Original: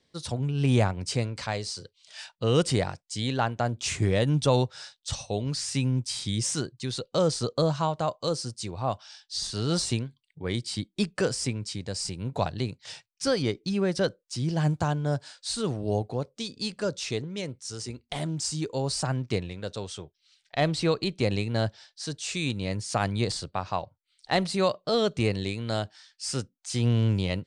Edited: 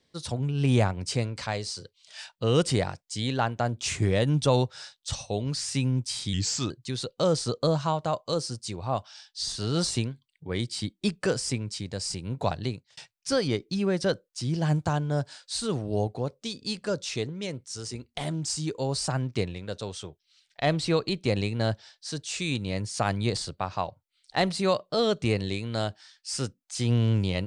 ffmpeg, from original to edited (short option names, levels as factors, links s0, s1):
-filter_complex "[0:a]asplit=4[s0][s1][s2][s3];[s0]atrim=end=6.334[s4];[s1]atrim=start=6.33:end=6.65,asetpts=PTS-STARTPTS,asetrate=37926,aresample=44100,atrim=end_sample=16409,asetpts=PTS-STARTPTS[s5];[s2]atrim=start=6.646:end=12.92,asetpts=PTS-STARTPTS,afade=t=out:st=5.954:d=0.32[s6];[s3]atrim=start=12.92,asetpts=PTS-STARTPTS,afade=t=in:d=0.004:c=hsin[s7];[s4][s5]acrossfade=d=0.004:c1=hsin:c2=hsin[s8];[s6][s7]concat=n=2:v=0:a=1[s9];[s8][s9]acrossfade=d=0.004:c1=hsin:c2=hsin"